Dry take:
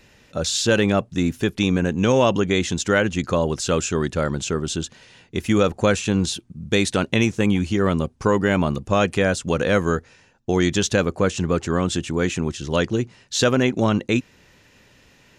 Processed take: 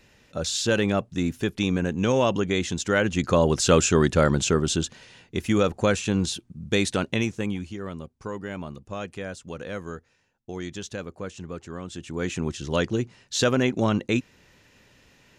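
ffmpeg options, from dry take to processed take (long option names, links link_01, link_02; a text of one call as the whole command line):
ffmpeg -i in.wav -af "volume=14.5dB,afade=type=in:start_time=2.9:duration=0.78:silence=0.421697,afade=type=out:start_time=4.33:duration=1.14:silence=0.473151,afade=type=out:start_time=6.87:duration=0.91:silence=0.266073,afade=type=in:start_time=11.92:duration=0.56:silence=0.266073" out.wav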